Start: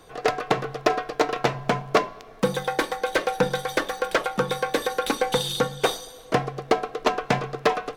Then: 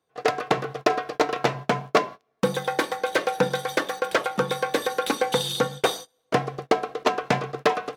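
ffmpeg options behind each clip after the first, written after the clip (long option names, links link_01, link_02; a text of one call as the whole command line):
ffmpeg -i in.wav -af "highpass=100,agate=range=-26dB:threshold=-34dB:ratio=16:detection=peak" out.wav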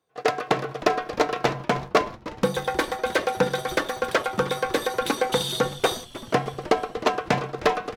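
ffmpeg -i in.wav -filter_complex "[0:a]asplit=7[link_01][link_02][link_03][link_04][link_05][link_06][link_07];[link_02]adelay=310,afreqshift=-130,volume=-16dB[link_08];[link_03]adelay=620,afreqshift=-260,volume=-20.3dB[link_09];[link_04]adelay=930,afreqshift=-390,volume=-24.6dB[link_10];[link_05]adelay=1240,afreqshift=-520,volume=-28.9dB[link_11];[link_06]adelay=1550,afreqshift=-650,volume=-33.2dB[link_12];[link_07]adelay=1860,afreqshift=-780,volume=-37.5dB[link_13];[link_01][link_08][link_09][link_10][link_11][link_12][link_13]amix=inputs=7:normalize=0" out.wav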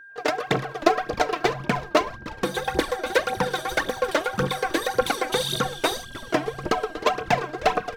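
ffmpeg -i in.wav -af "aphaser=in_gain=1:out_gain=1:delay=3.5:decay=0.69:speed=1.8:type=triangular,aeval=exprs='val(0)+0.00891*sin(2*PI*1600*n/s)':channel_layout=same,volume=-2dB" out.wav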